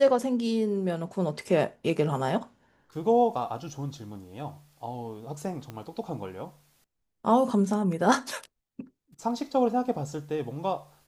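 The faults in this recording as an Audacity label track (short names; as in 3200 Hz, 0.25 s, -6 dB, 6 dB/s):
5.700000	5.700000	pop -24 dBFS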